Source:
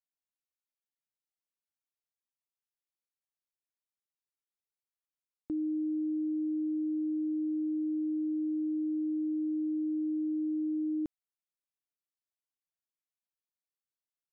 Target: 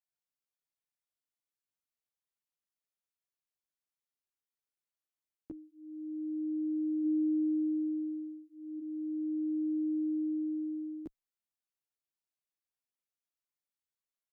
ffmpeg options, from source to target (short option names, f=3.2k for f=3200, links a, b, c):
-filter_complex "[0:a]asplit=3[a][b][c];[a]afade=t=out:st=7.03:d=0.02[d];[b]equalizer=f=160:t=o:w=0.85:g=15,afade=t=in:st=7.03:d=0.02,afade=t=out:st=8.79:d=0.02[e];[c]afade=t=in:st=8.79:d=0.02[f];[d][e][f]amix=inputs=3:normalize=0,asplit=2[g][h];[h]adelay=12,afreqshift=0.36[i];[g][i]amix=inputs=2:normalize=1"